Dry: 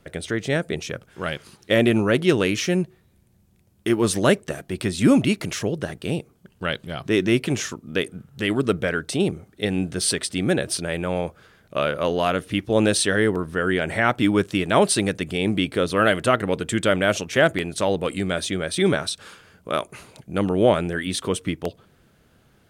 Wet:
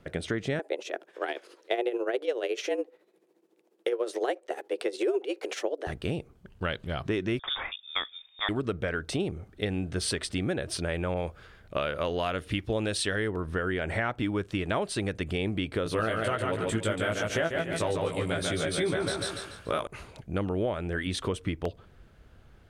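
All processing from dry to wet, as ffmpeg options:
ffmpeg -i in.wav -filter_complex "[0:a]asettb=1/sr,asplit=3[link_01][link_02][link_03];[link_01]atrim=end=0.594[link_04];[link_02]atrim=start=0.59:end=5.87,asetpts=PTS-STARTPTS,afade=type=in:duration=0.004:curve=qsin,afade=type=out:start_time=5.276:duration=0.004:curve=qsin,lowshelf=frequency=170:width_type=q:width=3:gain=-13.5,tremolo=f=14:d=0.66,afreqshift=130[link_05];[link_03]atrim=start=5.866[link_06];[link_04][link_05]acrossfade=duration=0.004:curve1=hsin:curve2=qsin[link_07];[link_07][link_06]acrossfade=duration=0.004:curve1=qsin:curve2=hsin,asettb=1/sr,asplit=3[link_08][link_09][link_10];[link_08]atrim=end=7.394[link_11];[link_09]atrim=start=7.39:end=8.49,asetpts=PTS-STARTPTS,afade=type=in:duration=0.004:curve=qsin,afade=type=out:start_time=1.096:duration=0.004:curve=qsin,highpass=frequency=240:poles=1,lowpass=frequency=3200:width_type=q:width=0.5098,lowpass=frequency=3200:width_type=q:width=0.6013,lowpass=frequency=3200:width_type=q:width=0.9,lowpass=frequency=3200:width_type=q:width=2.563,afreqshift=-3800[link_12];[link_10]atrim=start=8.486[link_13];[link_11][link_12]acrossfade=duration=0.004:curve1=hsin:curve2=qsin[link_14];[link_14][link_13]acrossfade=duration=0.004:curve1=qsin:curve2=hsin,asettb=1/sr,asplit=3[link_15][link_16][link_17];[link_15]atrim=end=11.144[link_18];[link_16]atrim=start=11.14:end=13.28,asetpts=PTS-STARTPTS,afade=type=in:duration=0.004:curve=qsin,afade=type=out:start_time=2.136:duration=0.004:curve=qsin,bandreject=frequency=6100:width=19,adynamicequalizer=threshold=0.02:dfrequency=1900:dqfactor=0.7:tfrequency=1900:tqfactor=0.7:attack=5:release=100:ratio=0.375:range=2.5:mode=boostabove:tftype=highshelf[link_19];[link_17]atrim=start=13.276[link_20];[link_18][link_19]acrossfade=duration=0.004:curve1=hsin:curve2=qsin[link_21];[link_21][link_20]acrossfade=duration=0.004:curve1=qsin:curve2=hsin,asettb=1/sr,asplit=3[link_22][link_23][link_24];[link_22]atrim=end=15.844[link_25];[link_23]atrim=start=15.84:end=19.87,asetpts=PTS-STARTPTS,afade=type=in:duration=0.004:curve=qsin,afade=type=out:start_time=4.026:duration=0.004:curve=qsin,equalizer=frequency=11000:width=0.95:gain=8,asplit=2[link_26][link_27];[link_27]adelay=18,volume=-2dB[link_28];[link_26][link_28]amix=inputs=2:normalize=0,atrim=end_sample=177723,aecho=1:1:144|288|432|576:0.631|0.221|0.0773|0.0271,atrim=end_sample=177723[link_29];[link_24]atrim=start=19.866[link_30];[link_25][link_29]acrossfade=duration=0.004:curve1=hsin:curve2=qsin[link_31];[link_31][link_30]acrossfade=duration=0.004:curve1=qsin:curve2=hsin,lowpass=frequency=3100:poles=1,asubboost=boost=5:cutoff=70,acompressor=threshold=-26dB:ratio=6" out.wav

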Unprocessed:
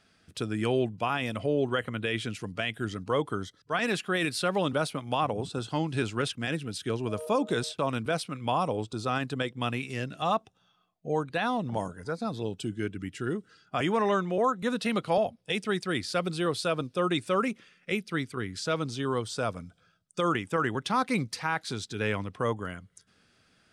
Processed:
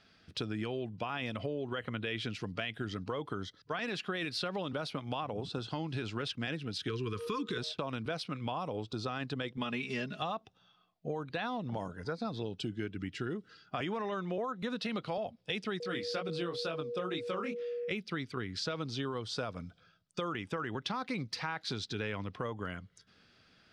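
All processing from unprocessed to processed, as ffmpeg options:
ffmpeg -i in.wav -filter_complex "[0:a]asettb=1/sr,asplit=3[link_01][link_02][link_03];[link_01]atrim=end=6.884[link_04];[link_02]atrim=start=6.88:end=7.58,asetpts=PTS-STARTPTS,afade=type=in:duration=0.004:curve=qsin,afade=type=out:start_time=0.696:duration=0.004:curve=qsin,equalizer=frequency=250:width_type=o:width=1.1:gain=-5.5,acontrast=82,asuperstop=centerf=690:order=12:qfactor=1.3[link_05];[link_03]atrim=start=7.576[link_06];[link_04][link_05]acrossfade=duration=0.004:curve1=hsin:curve2=qsin[link_07];[link_07][link_06]acrossfade=duration=0.004:curve1=qsin:curve2=hsin,asettb=1/sr,asplit=3[link_08][link_09][link_10];[link_08]atrim=end=9.574[link_11];[link_09]atrim=start=9.57:end=10.2,asetpts=PTS-STARTPTS,afade=type=in:duration=0.004:curve=qsin,afade=type=out:start_time=0.626:duration=0.004:curve=qsin,highpass=45,aecho=1:1:4.8:0.76,atrim=end_sample=27783[link_12];[link_10]atrim=start=10.196[link_13];[link_11][link_12]acrossfade=duration=0.004:curve1=hsin:curve2=qsin[link_14];[link_14][link_13]acrossfade=duration=0.004:curve1=qsin:curve2=hsin,asettb=1/sr,asplit=3[link_15][link_16][link_17];[link_15]atrim=end=15.804[link_18];[link_16]atrim=start=15.8:end=17.91,asetpts=PTS-STARTPTS,afade=type=in:duration=0.004:curve=qsin,afade=type=out:start_time=2.106:duration=0.004:curve=qsin,highpass=120,flanger=delay=18:depth=6.3:speed=2.1,aeval=exprs='val(0)+0.02*sin(2*PI*480*n/s)':channel_layout=same[link_19];[link_17]atrim=start=17.906[link_20];[link_18][link_19]acrossfade=duration=0.004:curve1=hsin:curve2=qsin[link_21];[link_21][link_20]acrossfade=duration=0.004:curve1=qsin:curve2=hsin,alimiter=limit=-20dB:level=0:latency=1,acompressor=threshold=-33dB:ratio=6,highshelf=frequency=6400:width_type=q:width=1.5:gain=-10.5" out.wav

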